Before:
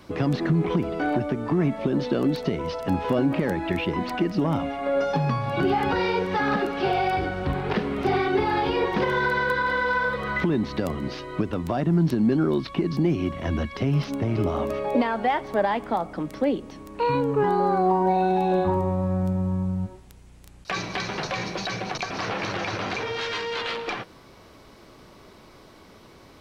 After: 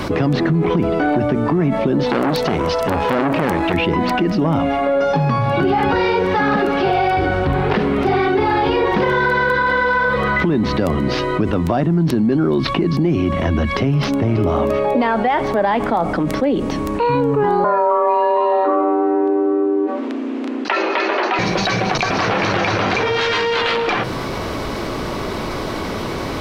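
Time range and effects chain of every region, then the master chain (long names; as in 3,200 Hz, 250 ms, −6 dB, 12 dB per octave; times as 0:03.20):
0:02.06–0:03.74: high-shelf EQ 4,100 Hz +8 dB + saturating transformer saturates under 1,400 Hz
0:17.64–0:21.39: low-pass filter 2,800 Hz + frequency shifter +210 Hz
whole clip: high-shelf EQ 4,000 Hz −6 dB; hum removal 62.34 Hz, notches 3; envelope flattener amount 70%; level +3.5 dB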